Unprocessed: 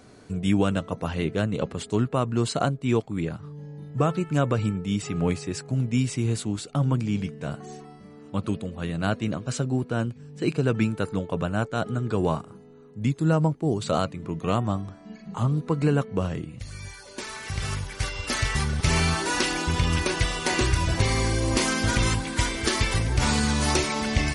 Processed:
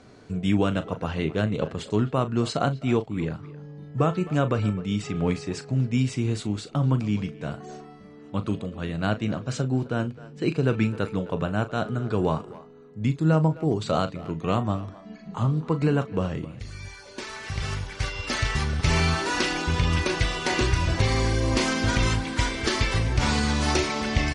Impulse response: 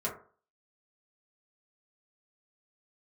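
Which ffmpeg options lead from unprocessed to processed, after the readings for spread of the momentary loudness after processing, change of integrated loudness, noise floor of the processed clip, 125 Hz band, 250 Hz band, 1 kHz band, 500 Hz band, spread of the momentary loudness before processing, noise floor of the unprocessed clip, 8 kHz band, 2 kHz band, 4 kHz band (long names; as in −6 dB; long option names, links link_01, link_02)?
11 LU, 0.0 dB, −46 dBFS, +0.5 dB, 0.0 dB, 0.0 dB, +0.5 dB, 10 LU, −48 dBFS, −4.5 dB, 0.0 dB, −0.5 dB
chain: -filter_complex "[0:a]lowpass=6100,asplit=2[link_01][link_02];[link_02]adelay=38,volume=-12.5dB[link_03];[link_01][link_03]amix=inputs=2:normalize=0,asplit=2[link_04][link_05];[link_05]adelay=260,highpass=300,lowpass=3400,asoftclip=type=hard:threshold=-18dB,volume=-17dB[link_06];[link_04][link_06]amix=inputs=2:normalize=0"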